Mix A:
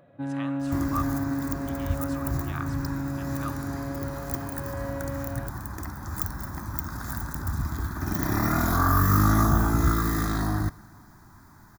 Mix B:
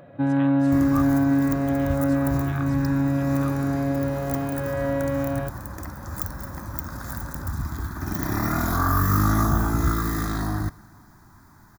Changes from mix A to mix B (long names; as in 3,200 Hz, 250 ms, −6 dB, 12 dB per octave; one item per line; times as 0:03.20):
speech: send −8.5 dB
first sound +9.5 dB